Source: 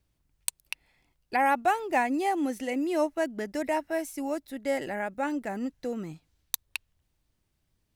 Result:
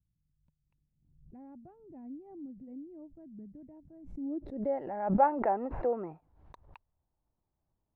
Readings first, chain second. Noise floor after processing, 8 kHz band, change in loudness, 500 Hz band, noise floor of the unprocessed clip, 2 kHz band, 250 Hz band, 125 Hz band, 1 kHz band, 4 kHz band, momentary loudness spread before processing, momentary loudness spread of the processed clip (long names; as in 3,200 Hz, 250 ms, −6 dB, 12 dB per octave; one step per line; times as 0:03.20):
−83 dBFS, below −40 dB, −2.0 dB, −4.5 dB, −76 dBFS, −18.5 dB, −6.5 dB, +5.0 dB, −5.0 dB, below −30 dB, 11 LU, 24 LU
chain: low-pass filter sweep 160 Hz → 880 Hz, 0:04.05–0:04.79
gain on a spectral selection 0:05.19–0:06.21, 330–2,800 Hz +10 dB
background raised ahead of every attack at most 70 dB per second
level −8.5 dB